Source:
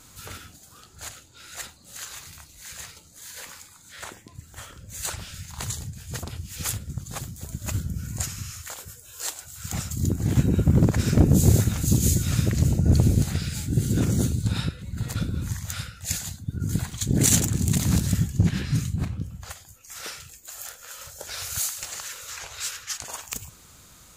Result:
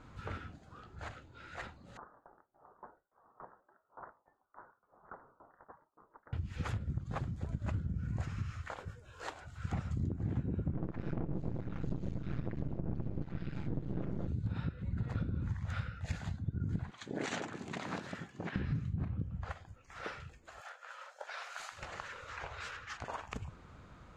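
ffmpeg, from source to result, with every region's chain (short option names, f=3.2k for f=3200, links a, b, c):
-filter_complex "[0:a]asettb=1/sr,asplit=3[a][b][c];[a]atrim=end=1.974[d];[b]atrim=start=1.97:end=6.33,asetpts=PTS-STARTPTS,afade=t=in:d=0.004:c=qsin,afade=t=out:st=4.356:d=0.004:c=qsin,highpass=f=1.5k:w=0.5412,highpass=f=1.5k:w=1.3066,lowpass=f=2.4k:t=q:w=0.5098,lowpass=f=2.4k:t=q:w=0.6013,lowpass=f=2.4k:t=q:w=0.9,lowpass=f=2.4k:t=q:w=2.563,afreqshift=-2800,aeval=exprs='val(0)*pow(10,-19*if(lt(mod(3.5*n/s,1),2*abs(3.5)/1000),1-mod(3.5*n/s,1)/(2*abs(3.5)/1000),(mod(3.5*n/s,1)-2*abs(3.5)/1000)/(1-2*abs(3.5)/1000))/20)':c=same[e];[c]atrim=start=6.326[f];[d][e]acrossfade=d=0.004:c1=hsin:c2=qsin[g];[g][f]acrossfade=d=0.004:c1=qsin:c2=hsin,asettb=1/sr,asplit=3[h][i][j];[h]atrim=end=10.734[k];[i]atrim=start=10.73:end=14.28,asetpts=PTS-STARTPTS,afade=t=in:d=0.004:c=qsin,afade=t=out:st=3.546:d=0.004:c=qsin,lowpass=4.9k,aecho=1:1:5.9:0.48,atrim=end_sample=156555,aeval=exprs='max(val(0),0)':c=same[l];[j]atrim=start=14.276[m];[k][l]acrossfade=d=0.004:c1=hsin:c2=qsin[n];[n][m]acrossfade=d=0.004:c1=qsin:c2=hsin,asettb=1/sr,asplit=3[o][p][q];[o]atrim=end=16.914[r];[p]atrim=start=16.91:end=18.56,asetpts=PTS-STARTPTS,afade=t=in:d=0.004:c=qsin,afade=t=out:st=1.646:d=0.004:c=qsin,highpass=600,acrossover=split=8200[s][t];[t]acompressor=threshold=-39dB:ratio=4:attack=1:release=60[u];[s][u]amix=inputs=2:normalize=0[v];[q]atrim=start=18.556[w];[r][v]acrossfade=d=0.004:c1=hsin:c2=qsin[x];[x][w]acrossfade=d=0.004:c1=qsin:c2=hsin,asettb=1/sr,asplit=3[y][z][aa];[y]atrim=end=20.604[ab];[z]atrim=start=20.6:end=21.72,asetpts=PTS-STARTPTS,afade=t=in:d=0.004:c=qsin,afade=t=out:st=1.116:d=0.004:c=qsin,highpass=f=630:w=0.5412,highpass=f=630:w=1.3066,asoftclip=type=hard:threshold=-17.5dB[ac];[aa]atrim=start=21.716[ad];[ab][ac]acrossfade=d=0.004:c1=hsin:c2=qsin[ae];[ae][ad]acrossfade=d=0.004:c1=qsin:c2=hsin,lowpass=1.6k,acompressor=threshold=-32dB:ratio=10"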